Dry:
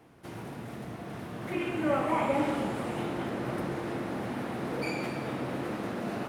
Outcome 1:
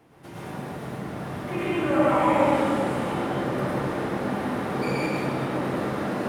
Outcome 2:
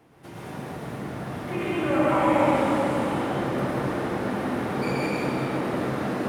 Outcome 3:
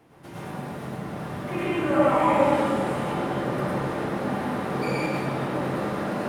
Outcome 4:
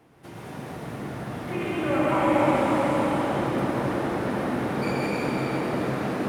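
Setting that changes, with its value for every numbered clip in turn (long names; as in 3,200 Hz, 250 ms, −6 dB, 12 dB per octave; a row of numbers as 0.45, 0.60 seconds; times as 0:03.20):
dense smooth reverb, RT60: 1.1, 2.5, 0.52, 5.3 seconds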